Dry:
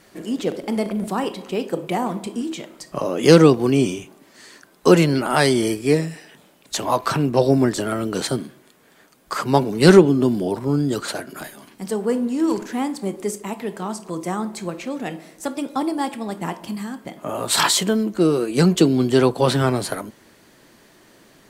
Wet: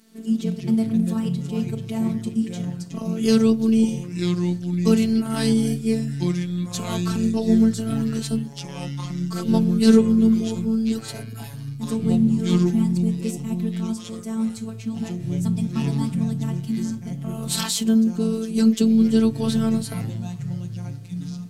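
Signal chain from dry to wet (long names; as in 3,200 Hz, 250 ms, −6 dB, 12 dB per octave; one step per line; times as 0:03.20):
octave-band graphic EQ 250/500/1,000/2,000 Hz +10/−9/−7/−7 dB
phases set to zero 223 Hz
delay with pitch and tempo change per echo 86 ms, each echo −4 semitones, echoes 3, each echo −6 dB
level −2.5 dB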